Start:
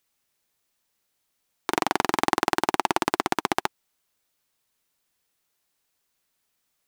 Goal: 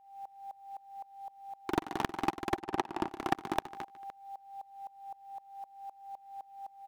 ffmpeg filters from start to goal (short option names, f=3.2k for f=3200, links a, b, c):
-filter_complex "[0:a]alimiter=limit=-12.5dB:level=0:latency=1:release=88,bass=f=250:g=4,treble=f=4k:g=-9,aecho=1:1:149|298|447:0.141|0.0523|0.0193,aeval=exprs='val(0)+0.00282*sin(2*PI*790*n/s)':c=same,asettb=1/sr,asplit=3[a][b][c];[a]atrim=end=2.604[d];[b]atrim=start=2.6:end=3.09,asetpts=PTS-STARTPTS,afade=t=in:d=0.004:c=qsin,afade=t=out:st=0.486:d=0.004:c=qsin,highshelf=f=3.7k:g=-11[e];[c]atrim=start=3.086[f];[d][e]acrossfade=d=0.004:c1=hsin:c2=qsin[g];[g][f]acrossfade=d=0.004:c1=qsin:c2=hsin,asoftclip=type=tanh:threshold=-30.5dB,aeval=exprs='val(0)*pow(10,-23*if(lt(mod(-3.9*n/s,1),2*abs(-3.9)/1000),1-mod(-3.9*n/s,1)/(2*abs(-3.9)/1000),(mod(-3.9*n/s,1)-2*abs(-3.9)/1000)/(1-2*abs(-3.9)/1000))/20)':c=same,volume=14dB"